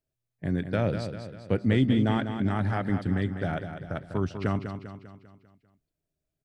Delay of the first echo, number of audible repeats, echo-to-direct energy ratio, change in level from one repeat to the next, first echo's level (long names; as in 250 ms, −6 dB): 198 ms, 5, −7.0 dB, −6.0 dB, −8.5 dB